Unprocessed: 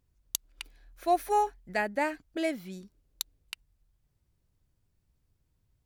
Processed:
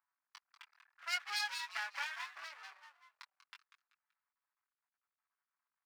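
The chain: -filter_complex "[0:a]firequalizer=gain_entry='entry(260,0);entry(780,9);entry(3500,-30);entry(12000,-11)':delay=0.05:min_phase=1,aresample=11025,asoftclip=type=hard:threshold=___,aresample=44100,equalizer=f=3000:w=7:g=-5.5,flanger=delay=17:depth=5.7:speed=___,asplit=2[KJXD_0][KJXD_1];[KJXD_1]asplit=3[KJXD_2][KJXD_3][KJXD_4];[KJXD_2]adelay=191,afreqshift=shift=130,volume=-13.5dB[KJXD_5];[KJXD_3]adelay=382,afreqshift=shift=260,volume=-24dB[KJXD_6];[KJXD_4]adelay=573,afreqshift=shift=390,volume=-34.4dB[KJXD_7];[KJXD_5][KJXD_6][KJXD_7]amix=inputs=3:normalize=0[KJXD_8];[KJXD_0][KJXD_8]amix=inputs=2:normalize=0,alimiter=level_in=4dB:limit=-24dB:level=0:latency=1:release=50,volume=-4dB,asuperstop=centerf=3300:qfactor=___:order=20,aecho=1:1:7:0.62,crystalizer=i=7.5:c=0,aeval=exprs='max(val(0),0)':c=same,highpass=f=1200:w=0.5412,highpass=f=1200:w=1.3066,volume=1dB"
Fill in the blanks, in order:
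-21.5dB, 0.78, 3.1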